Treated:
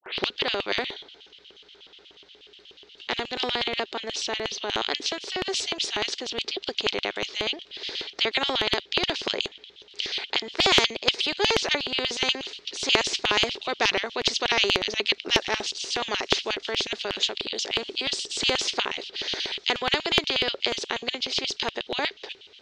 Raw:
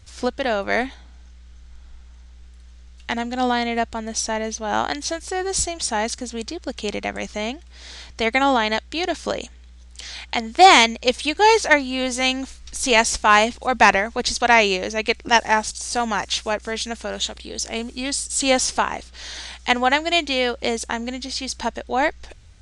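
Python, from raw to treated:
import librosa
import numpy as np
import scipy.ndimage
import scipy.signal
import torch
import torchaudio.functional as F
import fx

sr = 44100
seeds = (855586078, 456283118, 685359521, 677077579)

y = fx.tape_start_head(x, sr, length_s=0.3)
y = fx.ladder_lowpass(y, sr, hz=4900.0, resonance_pct=40)
y = fx.filter_lfo_highpass(y, sr, shape='square', hz=8.3, low_hz=400.0, high_hz=3000.0, q=7.5)
y = fx.spectral_comp(y, sr, ratio=2.0)
y = y * 10.0 ** (-3.0 / 20.0)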